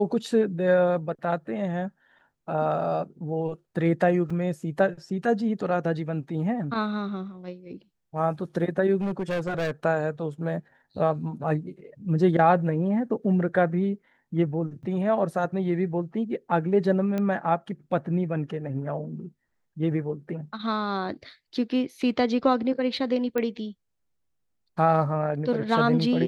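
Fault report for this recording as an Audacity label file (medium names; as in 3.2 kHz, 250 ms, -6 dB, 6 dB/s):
4.300000	4.300000	dropout 4.2 ms
9.010000	9.710000	clipped -24 dBFS
14.830000	14.830000	dropout 4.8 ms
17.180000	17.180000	pop -17 dBFS
23.380000	23.380000	pop -15 dBFS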